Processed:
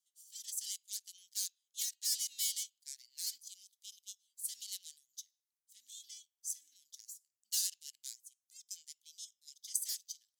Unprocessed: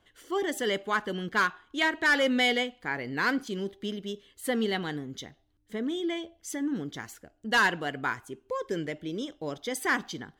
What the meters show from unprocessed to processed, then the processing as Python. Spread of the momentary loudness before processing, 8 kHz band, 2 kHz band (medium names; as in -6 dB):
14 LU, +6.0 dB, -36.5 dB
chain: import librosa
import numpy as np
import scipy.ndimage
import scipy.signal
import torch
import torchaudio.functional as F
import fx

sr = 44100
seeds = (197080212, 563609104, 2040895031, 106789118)

y = fx.cheby_harmonics(x, sr, harmonics=(7,), levels_db=(-21,), full_scale_db=-16.5)
y = scipy.signal.sosfilt(scipy.signal.cheby2(4, 70, 1300.0, 'highpass', fs=sr, output='sos'), y)
y = F.gain(torch.from_numpy(y), 7.0).numpy()